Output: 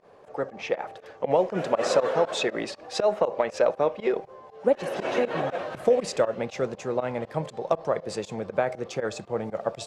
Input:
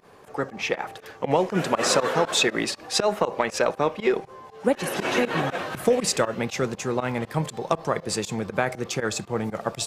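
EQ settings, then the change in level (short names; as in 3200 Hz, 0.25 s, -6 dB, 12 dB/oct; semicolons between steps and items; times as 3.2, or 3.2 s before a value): air absorption 57 m; bell 580 Hz +10 dB 0.92 oct; -7.0 dB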